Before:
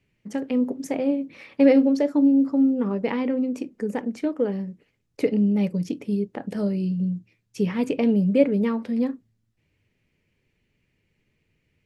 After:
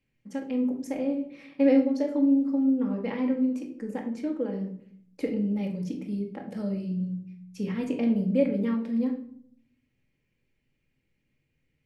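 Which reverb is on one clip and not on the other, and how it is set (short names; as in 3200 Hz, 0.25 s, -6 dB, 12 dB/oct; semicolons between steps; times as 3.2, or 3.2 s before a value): shoebox room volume 940 m³, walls furnished, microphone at 2.2 m; gain -9 dB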